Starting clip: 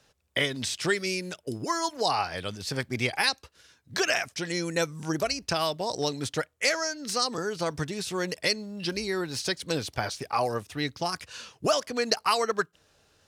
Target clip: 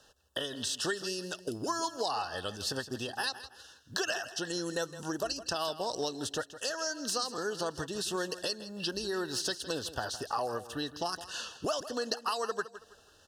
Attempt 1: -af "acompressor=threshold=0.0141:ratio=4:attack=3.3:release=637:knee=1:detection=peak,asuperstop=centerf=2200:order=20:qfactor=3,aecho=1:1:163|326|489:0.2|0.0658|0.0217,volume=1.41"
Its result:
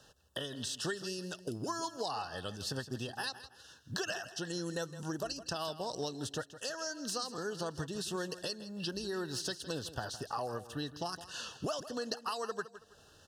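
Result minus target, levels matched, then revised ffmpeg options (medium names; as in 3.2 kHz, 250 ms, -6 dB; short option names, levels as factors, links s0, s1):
125 Hz band +6.5 dB; compression: peak gain reduction +5 dB
-af "acompressor=threshold=0.0299:ratio=4:attack=3.3:release=637:knee=1:detection=peak,asuperstop=centerf=2200:order=20:qfactor=3,equalizer=f=140:t=o:w=1.3:g=-8.5,aecho=1:1:163|326|489:0.2|0.0658|0.0217,volume=1.41"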